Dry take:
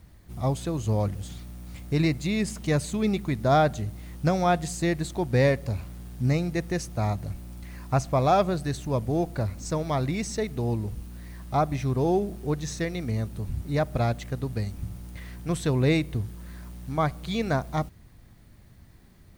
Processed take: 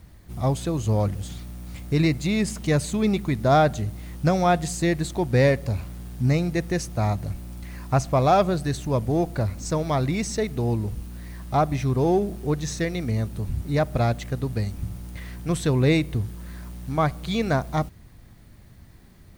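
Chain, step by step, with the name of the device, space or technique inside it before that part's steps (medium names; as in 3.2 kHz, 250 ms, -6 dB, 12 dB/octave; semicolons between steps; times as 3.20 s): parallel distortion (in parallel at -14 dB: hard clipper -25 dBFS, distortion -7 dB); on the sum: trim +2 dB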